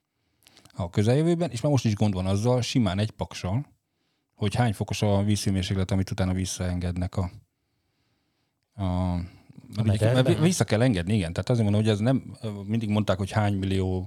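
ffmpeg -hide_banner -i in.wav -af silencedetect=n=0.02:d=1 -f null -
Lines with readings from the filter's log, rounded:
silence_start: 7.28
silence_end: 8.79 | silence_duration: 1.51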